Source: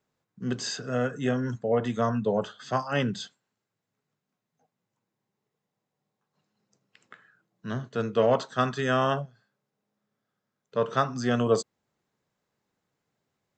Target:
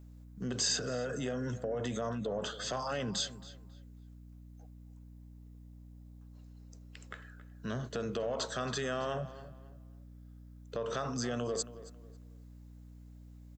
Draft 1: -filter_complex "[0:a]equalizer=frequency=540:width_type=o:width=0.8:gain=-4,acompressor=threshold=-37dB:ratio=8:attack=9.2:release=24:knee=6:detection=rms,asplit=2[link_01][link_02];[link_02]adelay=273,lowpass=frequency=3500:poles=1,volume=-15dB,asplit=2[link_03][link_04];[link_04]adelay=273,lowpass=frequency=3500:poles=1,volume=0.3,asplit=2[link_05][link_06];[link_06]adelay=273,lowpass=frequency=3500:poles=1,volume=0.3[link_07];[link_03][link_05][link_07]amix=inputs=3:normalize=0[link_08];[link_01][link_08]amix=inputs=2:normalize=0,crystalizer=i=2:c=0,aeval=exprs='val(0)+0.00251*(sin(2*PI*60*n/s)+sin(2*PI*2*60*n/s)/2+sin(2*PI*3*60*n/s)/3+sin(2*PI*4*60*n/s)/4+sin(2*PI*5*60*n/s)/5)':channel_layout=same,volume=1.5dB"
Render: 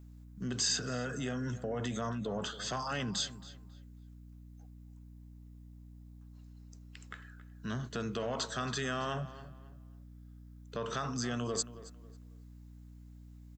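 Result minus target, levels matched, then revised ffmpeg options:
500 Hz band −3.0 dB
-filter_complex "[0:a]equalizer=frequency=540:width_type=o:width=0.8:gain=6,acompressor=threshold=-37dB:ratio=8:attack=9.2:release=24:knee=6:detection=rms,asplit=2[link_01][link_02];[link_02]adelay=273,lowpass=frequency=3500:poles=1,volume=-15dB,asplit=2[link_03][link_04];[link_04]adelay=273,lowpass=frequency=3500:poles=1,volume=0.3,asplit=2[link_05][link_06];[link_06]adelay=273,lowpass=frequency=3500:poles=1,volume=0.3[link_07];[link_03][link_05][link_07]amix=inputs=3:normalize=0[link_08];[link_01][link_08]amix=inputs=2:normalize=0,crystalizer=i=2:c=0,aeval=exprs='val(0)+0.00251*(sin(2*PI*60*n/s)+sin(2*PI*2*60*n/s)/2+sin(2*PI*3*60*n/s)/3+sin(2*PI*4*60*n/s)/4+sin(2*PI*5*60*n/s)/5)':channel_layout=same,volume=1.5dB"

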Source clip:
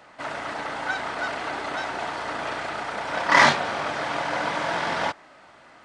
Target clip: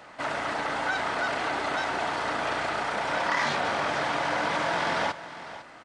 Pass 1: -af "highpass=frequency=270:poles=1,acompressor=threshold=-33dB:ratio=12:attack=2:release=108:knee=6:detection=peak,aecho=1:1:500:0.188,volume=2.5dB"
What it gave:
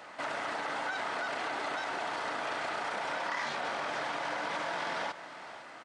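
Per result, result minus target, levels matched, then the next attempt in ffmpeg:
downward compressor: peak gain reduction +8.5 dB; 250 Hz band −2.0 dB
-af "highpass=frequency=270:poles=1,acompressor=threshold=-23.5dB:ratio=12:attack=2:release=108:knee=6:detection=peak,aecho=1:1:500:0.188,volume=2.5dB"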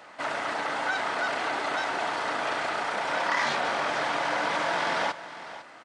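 250 Hz band −2.5 dB
-af "acompressor=threshold=-23.5dB:ratio=12:attack=2:release=108:knee=6:detection=peak,aecho=1:1:500:0.188,volume=2.5dB"

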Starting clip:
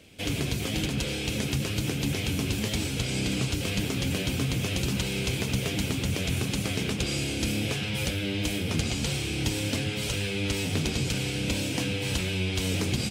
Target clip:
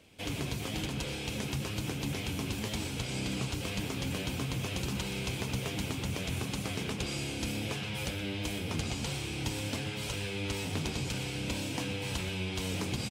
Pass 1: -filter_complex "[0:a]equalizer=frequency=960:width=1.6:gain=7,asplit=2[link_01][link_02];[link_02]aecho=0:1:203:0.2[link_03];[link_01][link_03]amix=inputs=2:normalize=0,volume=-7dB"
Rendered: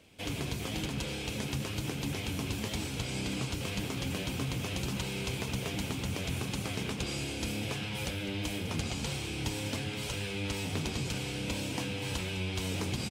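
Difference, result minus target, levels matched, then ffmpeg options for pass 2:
echo 80 ms late
-filter_complex "[0:a]equalizer=frequency=960:width=1.6:gain=7,asplit=2[link_01][link_02];[link_02]aecho=0:1:123:0.2[link_03];[link_01][link_03]amix=inputs=2:normalize=0,volume=-7dB"

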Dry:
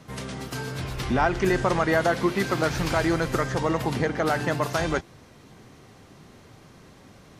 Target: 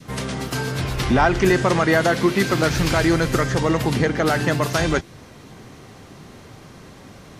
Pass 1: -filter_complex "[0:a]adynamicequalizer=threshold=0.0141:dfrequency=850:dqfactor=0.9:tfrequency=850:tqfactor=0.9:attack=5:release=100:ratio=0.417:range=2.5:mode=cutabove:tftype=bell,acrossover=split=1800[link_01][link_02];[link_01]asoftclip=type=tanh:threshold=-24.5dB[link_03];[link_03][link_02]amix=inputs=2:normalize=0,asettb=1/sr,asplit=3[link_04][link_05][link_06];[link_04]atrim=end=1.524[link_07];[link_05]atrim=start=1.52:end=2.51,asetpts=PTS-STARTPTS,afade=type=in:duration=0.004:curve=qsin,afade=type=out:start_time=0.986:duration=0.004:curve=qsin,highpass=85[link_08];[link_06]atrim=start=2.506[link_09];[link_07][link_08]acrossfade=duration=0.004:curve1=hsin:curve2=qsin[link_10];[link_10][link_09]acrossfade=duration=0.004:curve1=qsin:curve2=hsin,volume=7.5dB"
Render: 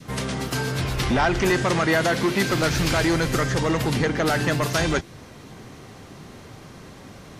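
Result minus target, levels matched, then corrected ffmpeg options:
soft clipping: distortion +14 dB
-filter_complex "[0:a]adynamicequalizer=threshold=0.0141:dfrequency=850:dqfactor=0.9:tfrequency=850:tqfactor=0.9:attack=5:release=100:ratio=0.417:range=2.5:mode=cutabove:tftype=bell,acrossover=split=1800[link_01][link_02];[link_01]asoftclip=type=tanh:threshold=-13.5dB[link_03];[link_03][link_02]amix=inputs=2:normalize=0,asettb=1/sr,asplit=3[link_04][link_05][link_06];[link_04]atrim=end=1.524[link_07];[link_05]atrim=start=1.52:end=2.51,asetpts=PTS-STARTPTS,afade=type=in:duration=0.004:curve=qsin,afade=type=out:start_time=0.986:duration=0.004:curve=qsin,highpass=85[link_08];[link_06]atrim=start=2.506[link_09];[link_07][link_08]acrossfade=duration=0.004:curve1=hsin:curve2=qsin[link_10];[link_10][link_09]acrossfade=duration=0.004:curve1=qsin:curve2=hsin,volume=7.5dB"

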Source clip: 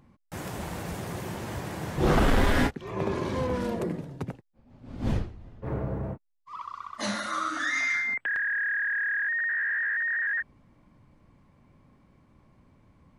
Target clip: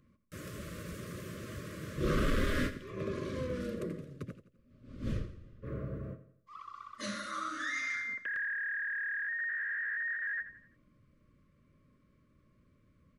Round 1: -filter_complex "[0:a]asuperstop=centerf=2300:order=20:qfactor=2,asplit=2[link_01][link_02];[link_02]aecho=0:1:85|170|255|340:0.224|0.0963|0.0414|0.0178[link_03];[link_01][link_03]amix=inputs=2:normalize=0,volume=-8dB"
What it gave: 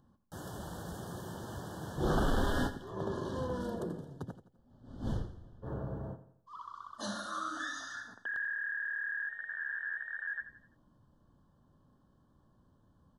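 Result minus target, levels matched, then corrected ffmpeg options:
1,000 Hz band +4.5 dB
-filter_complex "[0:a]asuperstop=centerf=820:order=20:qfactor=2,asplit=2[link_01][link_02];[link_02]aecho=0:1:85|170|255|340:0.224|0.0963|0.0414|0.0178[link_03];[link_01][link_03]amix=inputs=2:normalize=0,volume=-8dB"

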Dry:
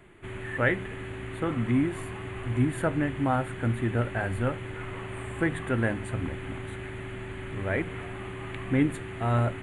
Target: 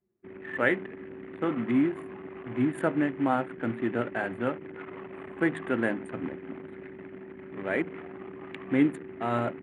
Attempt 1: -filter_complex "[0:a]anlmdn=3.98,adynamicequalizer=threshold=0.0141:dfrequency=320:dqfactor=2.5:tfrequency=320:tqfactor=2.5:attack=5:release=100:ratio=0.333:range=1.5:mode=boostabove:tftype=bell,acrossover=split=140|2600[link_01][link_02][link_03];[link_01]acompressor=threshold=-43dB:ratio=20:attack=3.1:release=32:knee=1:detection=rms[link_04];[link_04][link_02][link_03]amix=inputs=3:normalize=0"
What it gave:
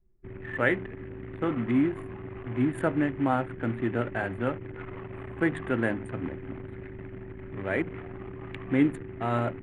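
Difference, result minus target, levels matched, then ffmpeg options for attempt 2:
125 Hz band +5.5 dB
-filter_complex "[0:a]anlmdn=3.98,adynamicequalizer=threshold=0.0141:dfrequency=320:dqfactor=2.5:tfrequency=320:tqfactor=2.5:attack=5:release=100:ratio=0.333:range=1.5:mode=boostabove:tftype=bell,acrossover=split=140|2600[link_01][link_02][link_03];[link_01]acompressor=threshold=-43dB:ratio=20:attack=3.1:release=32:knee=1:detection=rms,highpass=frequency=110:width=0.5412,highpass=frequency=110:width=1.3066[link_04];[link_04][link_02][link_03]amix=inputs=3:normalize=0"

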